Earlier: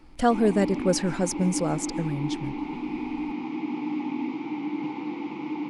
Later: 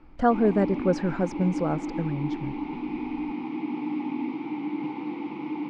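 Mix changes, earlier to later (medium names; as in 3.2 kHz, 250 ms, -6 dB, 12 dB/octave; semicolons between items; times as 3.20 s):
speech: add resonant high shelf 1.9 kHz -7 dB, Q 1.5; master: add distance through air 150 m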